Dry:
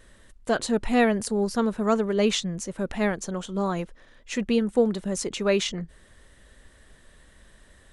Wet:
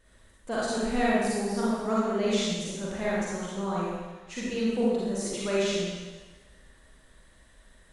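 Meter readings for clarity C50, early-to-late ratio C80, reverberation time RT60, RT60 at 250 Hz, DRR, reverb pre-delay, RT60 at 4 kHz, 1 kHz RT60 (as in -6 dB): -4.5 dB, 0.0 dB, 1.3 s, 1.2 s, -7.5 dB, 36 ms, 1.3 s, 1.4 s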